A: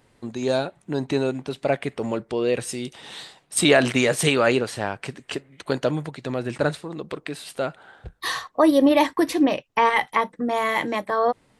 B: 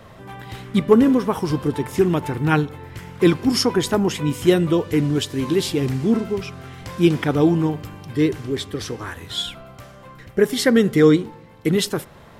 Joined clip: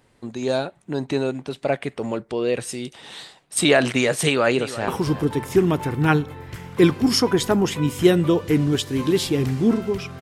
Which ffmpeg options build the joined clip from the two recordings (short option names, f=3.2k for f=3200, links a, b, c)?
-filter_complex "[0:a]apad=whole_dur=10.21,atrim=end=10.21,atrim=end=4.882[a];[1:a]atrim=start=1.308:end=6.64[b];[a][b]acrossfade=d=0.004:c1=hsin:c2=hsin,asplit=2[c][d];[d]afade=t=in:st=4.24:d=0.01,afade=t=out:st=4.88:d=0.01,aecho=0:1:340|680:0.199526|0.0299289[e];[c][e]amix=inputs=2:normalize=0"